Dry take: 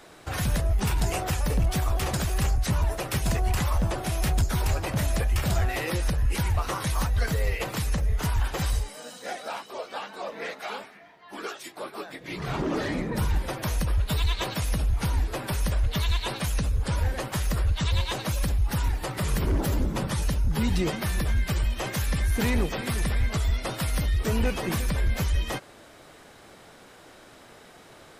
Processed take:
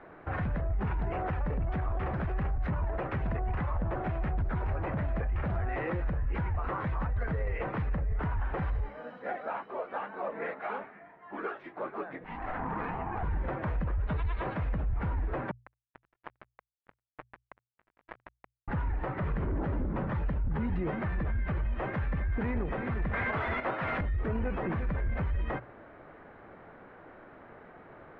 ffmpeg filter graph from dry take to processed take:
-filter_complex "[0:a]asettb=1/sr,asplit=3[a][b][c];[a]atrim=end=12.244[d];[b]atrim=start=12.24:end=13.23,asetpts=PTS-STARTPTS,afade=t=in:d=0.004:c=qsin,afade=t=out:st=0.986:d=0.004:c=qsin,bandreject=f=50:t=h:w=6,bandreject=f=100:t=h:w=6,bandreject=f=150:t=h:w=6,bandreject=f=200:t=h:w=6,bandreject=f=250:t=h:w=6,bandreject=f=300:t=h:w=6,bandreject=f=350:t=h:w=6,bandreject=f=400:t=h:w=6,bandreject=f=450:t=h:w=6,bandreject=f=500:t=h:w=6,afreqshift=250,aeval=exprs='val(0)*sin(2*PI*370*n/s)':c=same[e];[c]atrim=start=13.226[f];[d][e]acrossfade=d=0.004:c1=hsin:c2=qsin[g];[g][f]acrossfade=d=0.004:c1=qsin:c2=hsin,asettb=1/sr,asplit=3[h][i][j];[h]atrim=end=15.514[k];[i]atrim=start=15.51:end=18.68,asetpts=PTS-STARTPTS,afade=t=in:d=0.004:c=qsin,afade=t=out:st=3.166:d=0.004:c=qsin,highpass=500,lowpass=2.3k,acrusher=bits=3:mix=0:aa=0.5[l];[j]atrim=start=18.676[m];[k][l]acrossfade=d=0.004:c1=hsin:c2=qsin[n];[n][m]acrossfade=d=0.004:c1=qsin:c2=hsin,asettb=1/sr,asplit=3[o][p][q];[o]atrim=end=23.134[r];[p]atrim=start=23.13:end=24.01,asetpts=PTS-STARTPTS,afade=t=in:d=0.004:c=qsin,afade=t=out:st=0.876:d=0.004:c=qsin,agate=range=-26dB:threshold=-28dB:ratio=16:release=100:detection=peak,highpass=f=82:w=0.5412,highpass=f=82:w=1.3066,asplit=2[s][t];[t]highpass=f=720:p=1,volume=40dB,asoftclip=type=tanh:threshold=-16.5dB[u];[s][u]amix=inputs=2:normalize=0,lowpass=f=5.1k:p=1,volume=-6dB[v];[q]atrim=start=24.006[w];[r][v]acrossfade=d=0.004:c1=hsin:c2=qsin[x];[x][w]acrossfade=d=0.004:c1=qsin:c2=hsin,lowpass=f=1.9k:w=0.5412,lowpass=f=1.9k:w=1.3066,bandreject=f=60:t=h:w=6,bandreject=f=120:t=h:w=6,alimiter=level_in=1dB:limit=-24dB:level=0:latency=1:release=31,volume=-1dB"

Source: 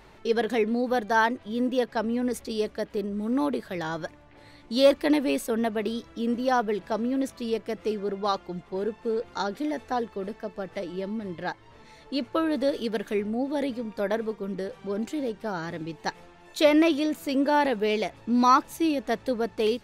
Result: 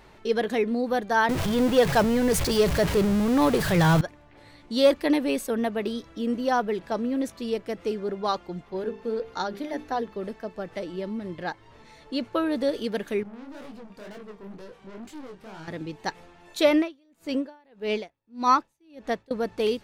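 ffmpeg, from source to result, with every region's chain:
-filter_complex "[0:a]asettb=1/sr,asplit=3[a][b][c];[a]atrim=end=1.294[d];[b]atrim=start=1.29:end=4.01,asetpts=PTS-STARTPTS,afade=t=in:d=0.004:c=qsin,afade=t=out:st=2.716:d=0.004:c=qsin,aeval=exprs='val(0)+0.5*0.0282*sgn(val(0))':c=same,lowshelf=f=190:t=q:w=3:g=6,acontrast=61[e];[c]atrim=start=4.006[f];[d][e]acrossfade=d=0.004:c1=hsin:c2=qsin[g];[g][f]acrossfade=d=0.004:c1=qsin:c2=hsin,asettb=1/sr,asplit=3[h][i][j];[h]atrim=end=8.654[k];[i]atrim=start=8.65:end=10.16,asetpts=PTS-STARTPTS,afade=t=in:d=0.004:c=qsin,afade=t=out:st=1.506:d=0.004:c=qsin,equalizer=f=8.2k:t=o:w=0.36:g=-8,bandreject=f=50:t=h:w=6,bandreject=f=100:t=h:w=6,bandreject=f=150:t=h:w=6,bandreject=f=200:t=h:w=6,bandreject=f=250:t=h:w=6,bandreject=f=300:t=h:w=6,bandreject=f=350:t=h:w=6,bandreject=f=400:t=h:w=6,bandreject=f=450:t=h:w=6[l];[j]atrim=start=10.156[m];[k][l]acrossfade=d=0.004:c1=hsin:c2=qsin[n];[n][m]acrossfade=d=0.004:c1=qsin:c2=hsin,asettb=1/sr,asplit=3[o][p][q];[o]atrim=end=13.234[r];[p]atrim=start=13.23:end=15.68,asetpts=PTS-STARTPTS,afade=t=in:d=0.004:c=qsin,afade=t=out:st=2.446:d=0.004:c=qsin,aeval=exprs='(tanh(70.8*val(0)+0.3)-tanh(0.3))/70.8':c=same,flanger=delay=19:depth=7.3:speed=2.1[s];[q]atrim=start=15.676[t];[r][s]acrossfade=d=0.004:c1=hsin:c2=qsin[u];[u][t]acrossfade=d=0.004:c1=qsin:c2=hsin,asettb=1/sr,asplit=3[v][w][x];[v]atrim=end=16.754[y];[w]atrim=start=16.75:end=19.31,asetpts=PTS-STARTPTS,afade=t=in:d=0.004:c=qsin,afade=t=out:st=2.556:d=0.004:c=qsin,highshelf=f=11k:g=-10.5,aeval=exprs='val(0)*pow(10,-37*(0.5-0.5*cos(2*PI*1.7*n/s))/20)':c=same[z];[x]atrim=start=19.306[aa];[y][z]acrossfade=d=0.004:c1=hsin:c2=qsin[ab];[ab][aa]acrossfade=d=0.004:c1=qsin:c2=hsin"

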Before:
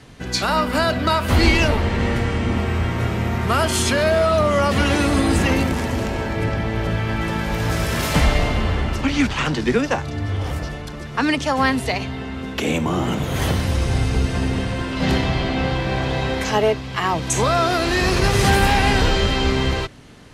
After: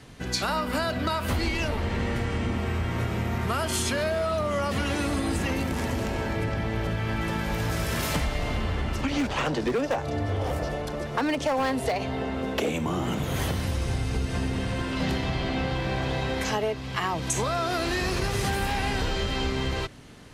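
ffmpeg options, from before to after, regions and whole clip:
-filter_complex "[0:a]asettb=1/sr,asplit=3[a][b][c];[a]atrim=end=9.114[d];[b]atrim=start=9.11:end=12.7,asetpts=PTS-STARTPTS,afade=t=in:d=0.004:c=qsin,afade=t=out:st=3.586:d=0.004:c=qsin,equalizer=f=580:w=1:g=10.5,asoftclip=type=hard:threshold=-11dB[e];[c]atrim=start=12.696[f];[d][e]acrossfade=d=0.004:c1=hsin:c2=qsin[g];[g][f]acrossfade=d=0.004:c1=qsin:c2=hsin,highshelf=f=11k:g=5.5,acompressor=threshold=-20dB:ratio=6,volume=-3.5dB"

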